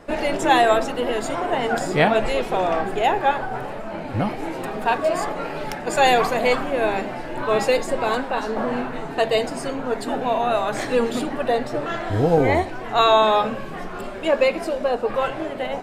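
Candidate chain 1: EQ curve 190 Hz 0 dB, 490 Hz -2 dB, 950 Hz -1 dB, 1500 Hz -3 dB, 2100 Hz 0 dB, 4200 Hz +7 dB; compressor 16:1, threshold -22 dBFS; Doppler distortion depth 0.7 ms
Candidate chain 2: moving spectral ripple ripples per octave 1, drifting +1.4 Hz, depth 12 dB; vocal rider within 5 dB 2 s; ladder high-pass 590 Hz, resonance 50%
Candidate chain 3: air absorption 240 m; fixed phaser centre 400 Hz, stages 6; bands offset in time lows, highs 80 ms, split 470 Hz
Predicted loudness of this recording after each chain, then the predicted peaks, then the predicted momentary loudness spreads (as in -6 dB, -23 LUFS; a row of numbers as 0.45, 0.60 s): -28.0, -24.5, -26.5 LUFS; -12.0, -3.0, -7.0 dBFS; 4, 13, 12 LU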